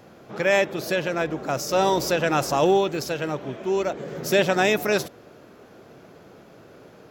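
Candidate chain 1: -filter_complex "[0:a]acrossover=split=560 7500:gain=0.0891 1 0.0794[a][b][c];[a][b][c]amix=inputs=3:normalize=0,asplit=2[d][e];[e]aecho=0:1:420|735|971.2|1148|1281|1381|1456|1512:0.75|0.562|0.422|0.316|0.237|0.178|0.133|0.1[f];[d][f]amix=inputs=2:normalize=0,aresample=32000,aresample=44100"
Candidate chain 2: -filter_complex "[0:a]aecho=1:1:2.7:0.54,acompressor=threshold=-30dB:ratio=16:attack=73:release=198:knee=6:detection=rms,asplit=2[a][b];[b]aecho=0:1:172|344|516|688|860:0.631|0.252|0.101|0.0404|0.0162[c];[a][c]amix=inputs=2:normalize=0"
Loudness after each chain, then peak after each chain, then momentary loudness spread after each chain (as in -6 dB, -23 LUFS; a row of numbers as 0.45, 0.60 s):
-24.5, -30.5 LUFS; -8.5, -16.0 dBFS; 7, 16 LU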